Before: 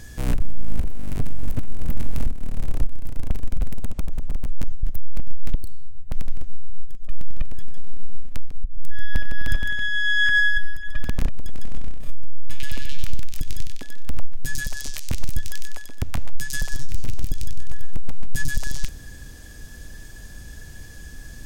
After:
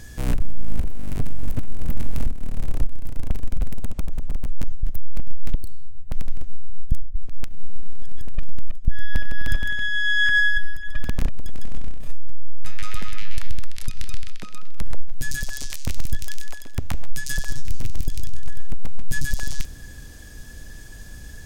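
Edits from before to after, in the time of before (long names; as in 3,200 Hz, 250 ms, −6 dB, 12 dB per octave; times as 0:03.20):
0:06.92–0:08.88: reverse
0:12.07–0:14.24: play speed 74%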